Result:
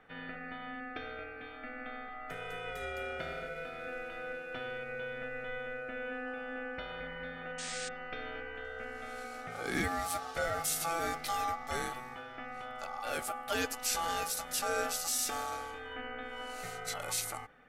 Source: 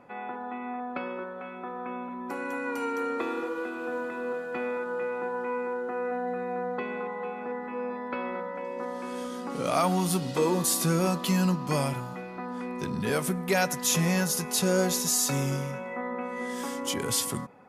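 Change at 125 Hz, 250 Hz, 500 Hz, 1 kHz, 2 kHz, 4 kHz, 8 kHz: −18.0, −15.5, −10.0, −5.5, −2.5, −6.0, −7.0 decibels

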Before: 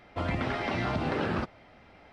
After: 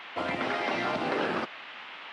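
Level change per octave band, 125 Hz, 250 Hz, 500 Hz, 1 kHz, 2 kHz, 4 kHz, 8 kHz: −12.0 dB, −2.0 dB, +2.0 dB, +2.5 dB, +3.5 dB, +4.5 dB, can't be measured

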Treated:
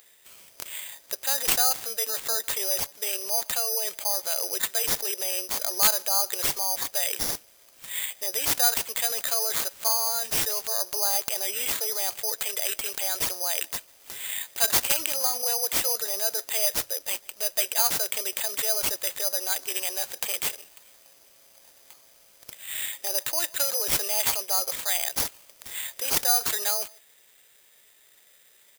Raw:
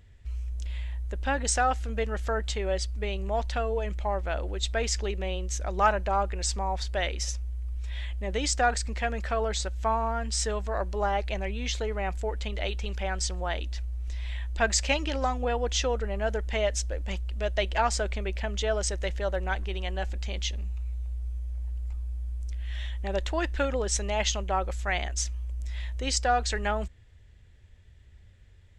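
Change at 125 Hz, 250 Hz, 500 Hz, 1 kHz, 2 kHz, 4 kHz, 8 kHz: −19.5, −10.0, −5.5, −5.0, −1.5, +6.0, +9.0 decibels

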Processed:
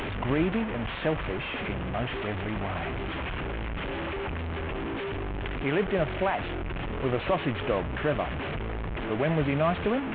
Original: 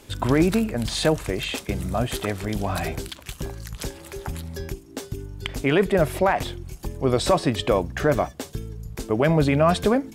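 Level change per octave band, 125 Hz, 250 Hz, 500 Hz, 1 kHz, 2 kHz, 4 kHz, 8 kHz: −5.5 dB, −6.0 dB, −6.0 dB, −5.0 dB, −2.0 dB, −7.5 dB, below −35 dB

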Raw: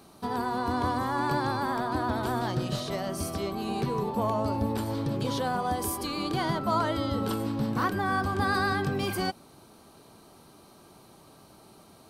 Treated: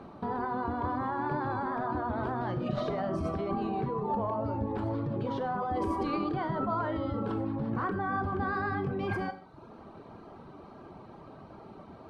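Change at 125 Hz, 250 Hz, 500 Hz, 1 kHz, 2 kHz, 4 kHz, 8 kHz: −3.0 dB, −2.5 dB, −2.0 dB, −3.0 dB, −5.5 dB, −14.5 dB, below −25 dB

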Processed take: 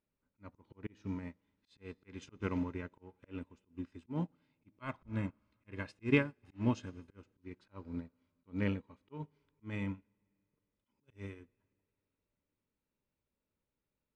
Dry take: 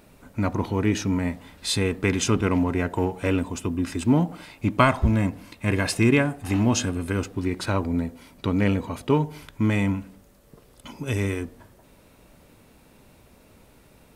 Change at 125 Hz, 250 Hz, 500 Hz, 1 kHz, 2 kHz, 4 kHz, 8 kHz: −17.0 dB, −16.0 dB, −17.0 dB, −20.5 dB, −15.0 dB, −22.5 dB, below −30 dB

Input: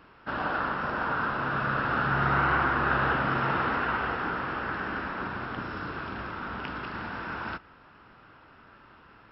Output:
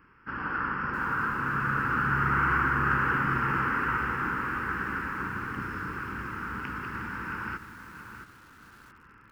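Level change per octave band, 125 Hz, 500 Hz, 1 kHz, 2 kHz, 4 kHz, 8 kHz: +0.5 dB, −6.5 dB, −0.5 dB, +1.0 dB, −7.0 dB, can't be measured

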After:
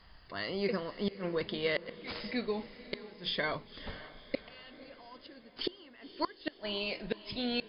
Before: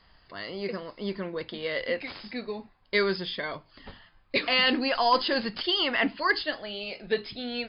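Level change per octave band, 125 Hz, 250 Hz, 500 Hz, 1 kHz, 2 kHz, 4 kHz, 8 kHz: −2.0 dB, −5.5 dB, −6.5 dB, −13.0 dB, −11.0 dB, −10.0 dB, can't be measured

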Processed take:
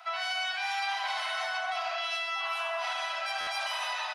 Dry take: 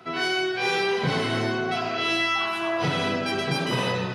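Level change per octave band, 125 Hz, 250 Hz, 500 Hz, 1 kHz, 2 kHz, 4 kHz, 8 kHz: below −40 dB, below −40 dB, −13.5 dB, −4.0 dB, −5.5 dB, −5.0 dB, −4.5 dB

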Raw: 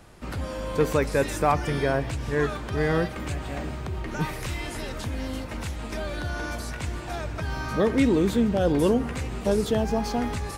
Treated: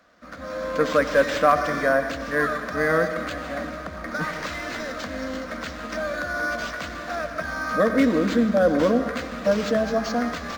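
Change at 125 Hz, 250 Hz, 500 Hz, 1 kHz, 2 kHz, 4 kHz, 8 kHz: −7.0, +1.0, +3.5, +4.5, +7.5, +2.0, −1.5 decibels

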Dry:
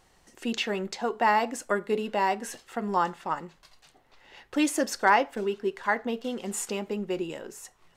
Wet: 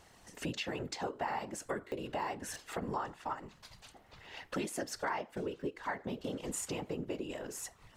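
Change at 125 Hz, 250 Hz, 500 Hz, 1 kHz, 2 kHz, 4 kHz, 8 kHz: −2.5, −10.0, −10.5, −13.0, −12.5, −8.5, −6.5 decibels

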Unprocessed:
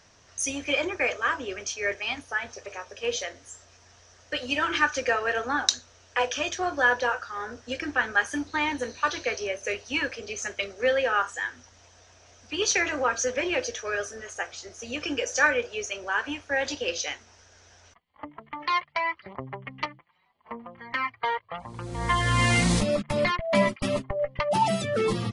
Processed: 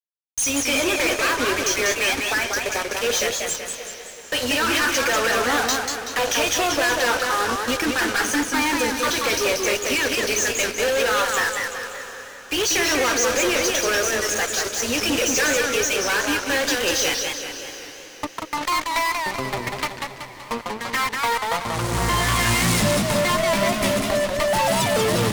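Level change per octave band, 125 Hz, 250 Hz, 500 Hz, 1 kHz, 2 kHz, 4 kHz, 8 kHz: +3.5, +6.5, +6.0, +5.5, +5.5, +9.5, +11.0 decibels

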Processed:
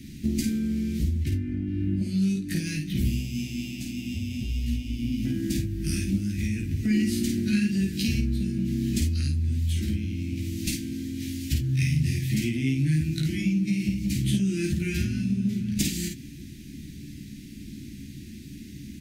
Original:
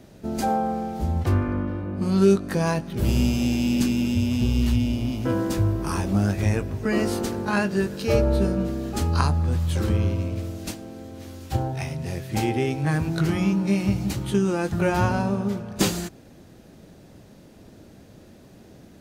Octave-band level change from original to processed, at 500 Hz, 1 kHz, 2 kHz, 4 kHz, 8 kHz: −15.0 dB, below −30 dB, −5.0 dB, −1.0 dB, 0.0 dB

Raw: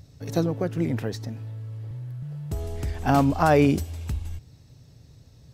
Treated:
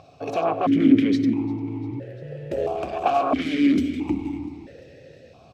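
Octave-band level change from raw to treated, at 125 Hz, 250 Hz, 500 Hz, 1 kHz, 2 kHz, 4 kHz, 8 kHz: −7.5 dB, +6.5 dB, +1.0 dB, +2.0 dB, −0.5 dB, +4.0 dB, can't be measured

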